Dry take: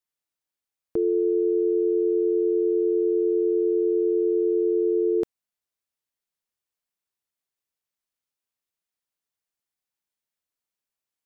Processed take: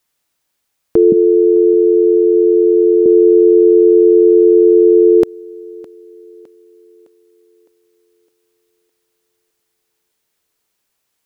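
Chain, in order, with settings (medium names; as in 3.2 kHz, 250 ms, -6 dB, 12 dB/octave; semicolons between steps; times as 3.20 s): 1.12–3.06 s: resonant low shelf 270 Hz +10.5 dB, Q 3; on a send: thinning echo 610 ms, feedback 48%, high-pass 160 Hz, level -24 dB; on the sum: loudness maximiser +19 dB; trim -1 dB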